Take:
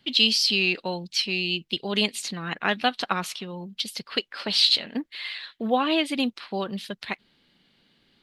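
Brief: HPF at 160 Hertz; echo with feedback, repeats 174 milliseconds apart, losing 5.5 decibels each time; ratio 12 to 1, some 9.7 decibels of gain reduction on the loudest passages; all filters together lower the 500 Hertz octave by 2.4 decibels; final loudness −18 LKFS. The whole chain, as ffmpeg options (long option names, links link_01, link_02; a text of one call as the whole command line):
ffmpeg -i in.wav -af "highpass=160,equalizer=frequency=500:width_type=o:gain=-3,acompressor=threshold=-25dB:ratio=12,aecho=1:1:174|348|522|696|870|1044|1218:0.531|0.281|0.149|0.079|0.0419|0.0222|0.0118,volume=11.5dB" out.wav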